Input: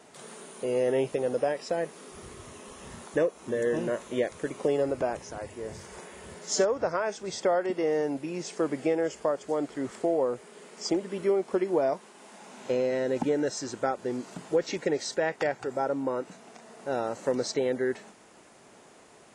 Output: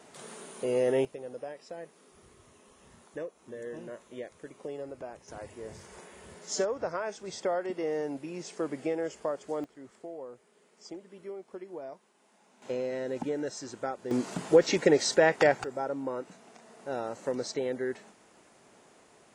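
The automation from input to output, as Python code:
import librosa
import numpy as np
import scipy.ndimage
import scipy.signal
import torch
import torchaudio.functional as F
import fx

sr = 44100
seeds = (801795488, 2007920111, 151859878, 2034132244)

y = fx.gain(x, sr, db=fx.steps((0.0, -0.5), (1.05, -13.0), (5.28, -5.0), (9.64, -16.0), (12.62, -6.0), (14.11, 5.5), (15.64, -4.5)))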